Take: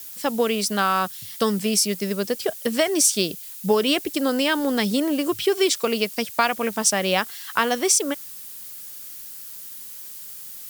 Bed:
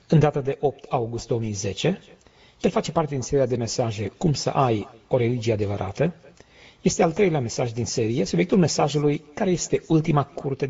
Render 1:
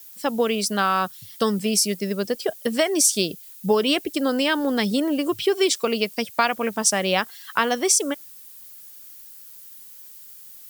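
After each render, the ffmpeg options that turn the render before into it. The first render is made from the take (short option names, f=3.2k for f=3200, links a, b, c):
-af "afftdn=nr=8:nf=-38"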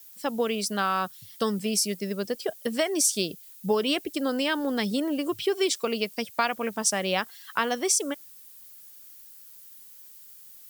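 -af "volume=-5dB"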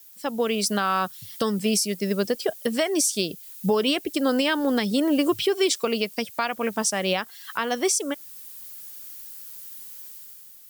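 -af "dynaudnorm=f=110:g=11:m=8dB,alimiter=limit=-12dB:level=0:latency=1:release=400"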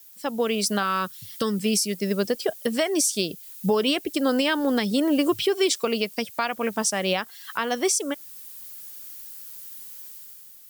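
-filter_complex "[0:a]asettb=1/sr,asplit=3[a][b][c];[a]atrim=end=0.834[d];[b]atrim=start=0.83:end=1.93,asetpts=PTS-STARTPTS,afade=t=in:d=0.004:c=qsin,afade=t=out:st=1.096:d=0.004:c=qsin,equalizer=f=750:t=o:w=0.4:g=-12[e];[c]atrim=start=1.926[f];[d][e]acrossfade=d=0.004:c1=hsin:c2=qsin[g];[g][f]acrossfade=d=0.004:c1=qsin:c2=hsin"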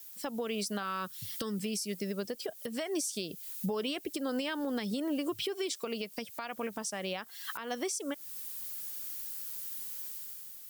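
-af "acompressor=threshold=-29dB:ratio=4,alimiter=level_in=1dB:limit=-24dB:level=0:latency=1:release=285,volume=-1dB"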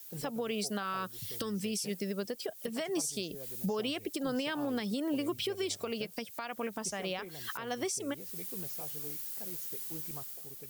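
-filter_complex "[1:a]volume=-27.5dB[a];[0:a][a]amix=inputs=2:normalize=0"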